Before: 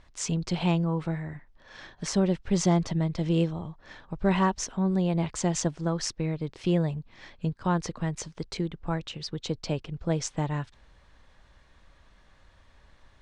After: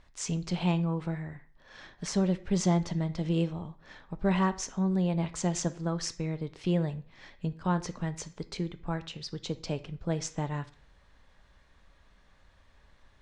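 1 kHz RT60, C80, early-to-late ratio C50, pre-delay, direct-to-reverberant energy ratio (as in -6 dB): 0.45 s, 21.0 dB, 16.0 dB, 3 ms, 10.5 dB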